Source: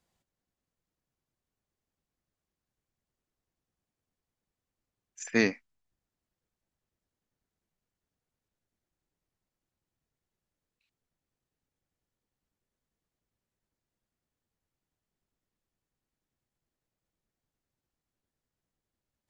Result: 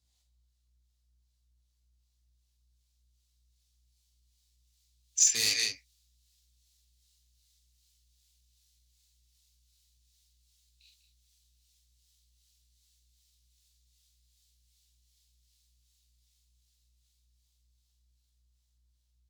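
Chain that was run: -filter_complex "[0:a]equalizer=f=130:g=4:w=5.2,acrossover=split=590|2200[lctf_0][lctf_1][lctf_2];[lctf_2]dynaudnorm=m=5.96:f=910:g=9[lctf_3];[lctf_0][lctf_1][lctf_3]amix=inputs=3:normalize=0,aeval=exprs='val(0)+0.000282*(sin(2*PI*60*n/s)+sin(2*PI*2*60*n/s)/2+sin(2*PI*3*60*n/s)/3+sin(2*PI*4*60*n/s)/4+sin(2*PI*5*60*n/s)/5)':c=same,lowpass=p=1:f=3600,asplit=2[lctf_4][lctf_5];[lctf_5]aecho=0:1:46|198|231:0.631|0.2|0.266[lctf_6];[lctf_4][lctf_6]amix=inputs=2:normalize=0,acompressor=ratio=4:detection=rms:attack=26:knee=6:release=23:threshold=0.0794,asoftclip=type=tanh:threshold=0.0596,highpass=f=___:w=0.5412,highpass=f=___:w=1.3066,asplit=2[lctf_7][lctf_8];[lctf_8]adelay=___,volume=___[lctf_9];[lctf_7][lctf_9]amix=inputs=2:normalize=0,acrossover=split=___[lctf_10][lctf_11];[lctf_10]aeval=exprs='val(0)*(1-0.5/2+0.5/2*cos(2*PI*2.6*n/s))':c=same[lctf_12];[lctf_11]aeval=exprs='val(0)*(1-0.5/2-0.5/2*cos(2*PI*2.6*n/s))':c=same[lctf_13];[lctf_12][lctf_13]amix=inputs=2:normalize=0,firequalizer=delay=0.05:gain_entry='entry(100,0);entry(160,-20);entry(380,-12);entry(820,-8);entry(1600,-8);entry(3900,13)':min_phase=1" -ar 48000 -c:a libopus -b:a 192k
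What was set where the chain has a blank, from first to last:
62, 62, 18, 0.473, 480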